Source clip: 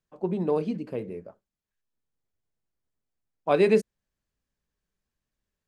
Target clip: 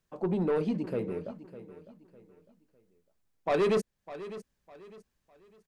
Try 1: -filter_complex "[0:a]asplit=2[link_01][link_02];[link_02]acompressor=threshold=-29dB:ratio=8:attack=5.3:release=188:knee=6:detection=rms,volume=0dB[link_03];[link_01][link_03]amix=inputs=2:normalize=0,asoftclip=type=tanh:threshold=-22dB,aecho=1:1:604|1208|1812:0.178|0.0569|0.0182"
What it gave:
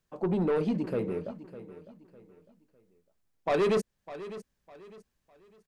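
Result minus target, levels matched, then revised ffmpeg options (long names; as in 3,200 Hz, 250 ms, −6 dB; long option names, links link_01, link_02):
downward compressor: peak gain reduction −9.5 dB
-filter_complex "[0:a]asplit=2[link_01][link_02];[link_02]acompressor=threshold=-40dB:ratio=8:attack=5.3:release=188:knee=6:detection=rms,volume=0dB[link_03];[link_01][link_03]amix=inputs=2:normalize=0,asoftclip=type=tanh:threshold=-22dB,aecho=1:1:604|1208|1812:0.178|0.0569|0.0182"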